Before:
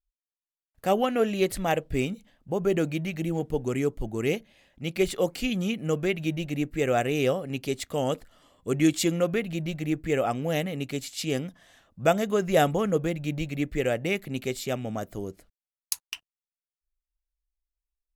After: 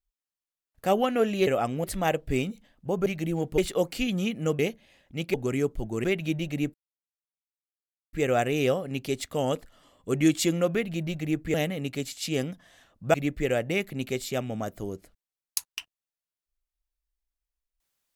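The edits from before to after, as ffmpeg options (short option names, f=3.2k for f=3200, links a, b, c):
-filter_complex "[0:a]asplit=11[a][b][c][d][e][f][g][h][i][j][k];[a]atrim=end=1.472[l];[b]atrim=start=10.128:end=10.502[m];[c]atrim=start=1.468:end=2.692[n];[d]atrim=start=3.038:end=3.562[o];[e]atrim=start=5.008:end=6.022[p];[f]atrim=start=4.258:end=5.012[q];[g]atrim=start=3.558:end=4.262[r];[h]atrim=start=6.018:end=6.72,asetpts=PTS-STARTPTS,afade=t=out:st=0.698:d=0.004:c=hsin,apad=pad_dur=1.39[s];[i]atrim=start=6.72:end=10.132,asetpts=PTS-STARTPTS,afade=t=in:d=0.004:c=hsin[t];[j]atrim=start=10.498:end=12.102[u];[k]atrim=start=13.488[v];[l][m]acrossfade=d=0.004:c1=hsin:c2=hsin[w];[w][n]acrossfade=d=0.004:c1=hsin:c2=hsin[x];[x][o]acrossfade=d=0.004:c1=hsin:c2=hsin[y];[y][p]acrossfade=d=0.004:c1=hsin:c2=hsin[z];[z][q]acrossfade=d=0.004:c1=hsin:c2=hsin[aa];[aa][r]acrossfade=d=0.004:c1=hsin:c2=hsin[ab];[s][t]concat=n=2:v=0:a=1[ac];[ab][ac]acrossfade=d=0.004:c1=hsin:c2=hsin[ad];[ad][u]acrossfade=d=0.004:c1=hsin:c2=hsin[ae];[ae][v]acrossfade=d=0.004:c1=hsin:c2=hsin"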